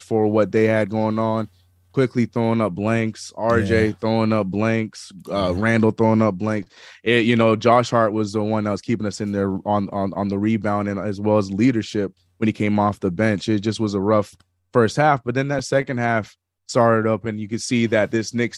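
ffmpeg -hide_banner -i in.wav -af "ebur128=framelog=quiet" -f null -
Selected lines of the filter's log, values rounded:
Integrated loudness:
  I:         -20.3 LUFS
  Threshold: -30.5 LUFS
Loudness range:
  LRA:         2.8 LU
  Threshold: -40.6 LUFS
  LRA low:   -21.7 LUFS
  LRA high:  -18.9 LUFS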